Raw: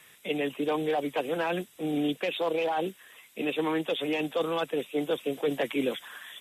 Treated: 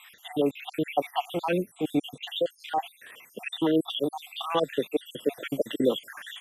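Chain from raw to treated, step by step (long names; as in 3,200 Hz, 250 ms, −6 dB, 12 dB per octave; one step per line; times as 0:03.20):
time-frequency cells dropped at random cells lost 65%
0:01.36–0:02.86: dynamic equaliser 1,500 Hz, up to −4 dB, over −46 dBFS, Q 0.7
level +6.5 dB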